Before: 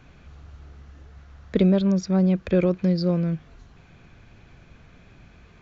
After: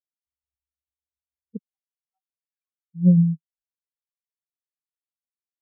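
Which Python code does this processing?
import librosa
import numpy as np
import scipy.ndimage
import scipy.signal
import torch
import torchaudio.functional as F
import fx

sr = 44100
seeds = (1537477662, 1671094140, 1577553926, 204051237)

y = fx.ellip_highpass(x, sr, hz=790.0, order=4, stop_db=40, at=(1.57, 2.94), fade=0.02)
y = y + 10.0 ** (-22.5 / 20.0) * np.pad(y, (int(104 * sr / 1000.0), 0))[:len(y)]
y = fx.spectral_expand(y, sr, expansion=4.0)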